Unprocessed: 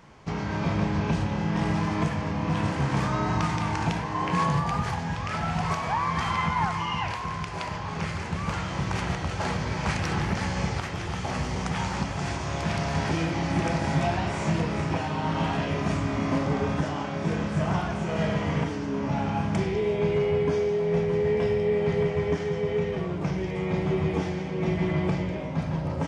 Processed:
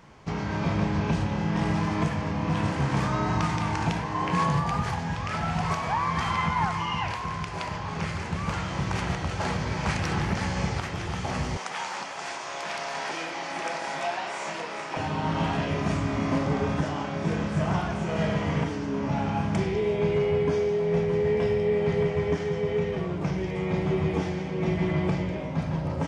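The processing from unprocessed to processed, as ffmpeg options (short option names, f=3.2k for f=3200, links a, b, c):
-filter_complex "[0:a]asettb=1/sr,asplit=3[a][b][c];[a]atrim=end=11.574[d];[b]atrim=start=11.57:end=14.97,asetpts=PTS-STARTPTS,afade=t=in:d=0.004:c=qsin,afade=t=out:st=3.396:d=0.004:c=qsin,highpass=580[e];[c]atrim=start=14.966[f];[d][e]acrossfade=d=0.004:c1=hsin:c2=qsin[g];[g][f]acrossfade=d=0.004:c1=qsin:c2=hsin"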